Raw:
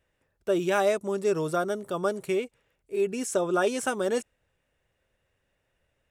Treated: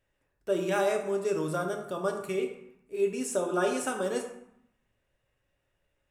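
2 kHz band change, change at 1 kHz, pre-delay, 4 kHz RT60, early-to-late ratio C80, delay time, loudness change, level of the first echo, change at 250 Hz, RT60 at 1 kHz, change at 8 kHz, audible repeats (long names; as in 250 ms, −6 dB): −3.0 dB, −3.0 dB, 3 ms, 0.50 s, 9.0 dB, no echo audible, −2.5 dB, no echo audible, −2.5 dB, 0.85 s, −2.0 dB, no echo audible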